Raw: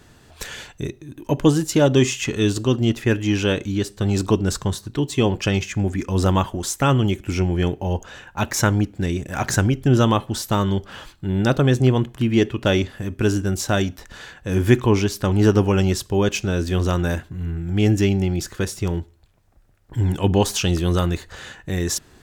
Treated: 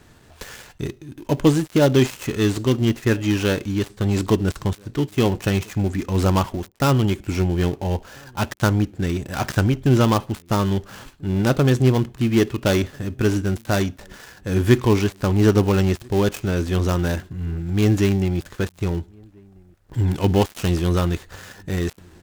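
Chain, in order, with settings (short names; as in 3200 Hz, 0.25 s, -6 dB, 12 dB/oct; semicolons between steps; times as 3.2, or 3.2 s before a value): switching dead time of 0.13 ms; outdoor echo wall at 230 m, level -29 dB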